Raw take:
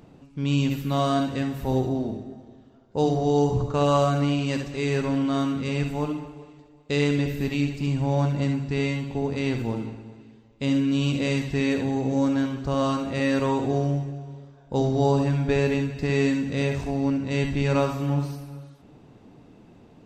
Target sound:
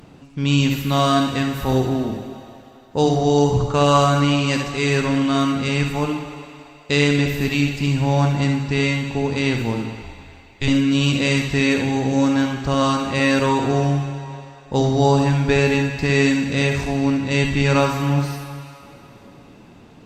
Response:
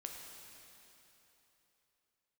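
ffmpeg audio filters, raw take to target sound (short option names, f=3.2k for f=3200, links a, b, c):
-filter_complex "[0:a]asettb=1/sr,asplit=3[a][b][c];[a]atrim=end=10.014[d];[b]atrim=start=10.01:end=10.68,asetpts=PTS-STARTPTS,afade=t=in:d=0.004:c=qsin,afade=t=out:st=0.666:d=0.004:c=qsin,afreqshift=-140[e];[c]atrim=start=10.676[f];[d][e]acrossfade=d=0.004:c1=hsin:c2=qsin[g];[g][f]acrossfade=d=0.004:c1=qsin:c2=hsin,asplit=2[h][i];[i]highpass=870[j];[1:a]atrim=start_sample=2205[k];[j][k]afir=irnorm=-1:irlink=0,volume=2dB[l];[h][l]amix=inputs=2:normalize=0,volume=5.5dB" -ar 48000 -c:a libopus -b:a 64k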